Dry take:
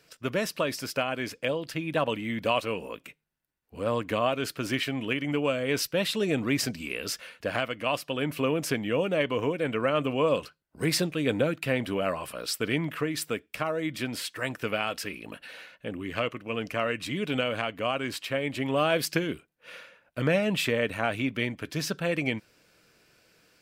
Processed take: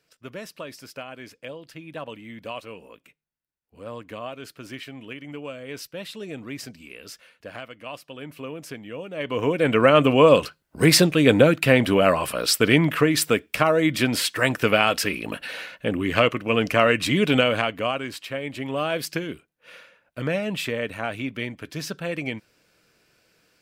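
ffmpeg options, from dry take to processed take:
-af "volume=3.35,afade=t=in:st=9.14:d=0.2:silence=0.298538,afade=t=in:st=9.34:d=0.47:silence=0.375837,afade=t=out:st=17.21:d=0.89:silence=0.266073"

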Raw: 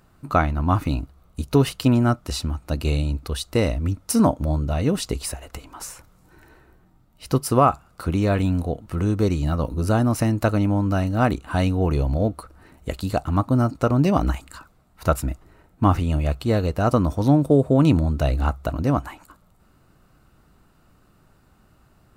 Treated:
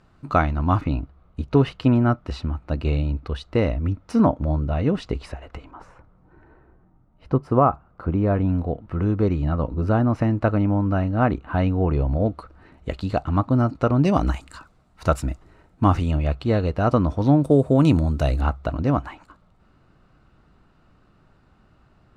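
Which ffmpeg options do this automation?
-af "asetnsamples=n=441:p=0,asendcmd='0.81 lowpass f 2500;5.71 lowpass f 1300;8.49 lowpass f 2100;12.26 lowpass f 3800;14.05 lowpass f 7200;16.11 lowpass f 3800;17.44 lowpass f 10000;18.41 lowpass f 4100',lowpass=5200"

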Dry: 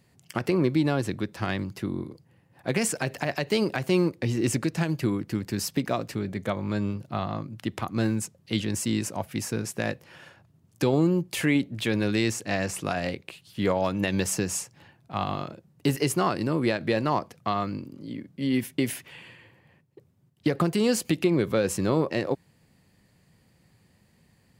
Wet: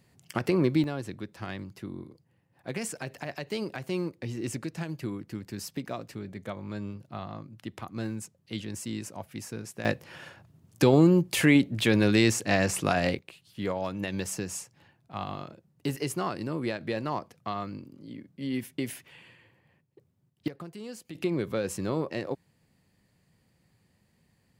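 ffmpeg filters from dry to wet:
-af "asetnsamples=n=441:p=0,asendcmd='0.84 volume volume -8.5dB;9.85 volume volume 3dB;13.19 volume volume -6.5dB;20.48 volume volume -18dB;21.15 volume volume -6dB',volume=0.891"

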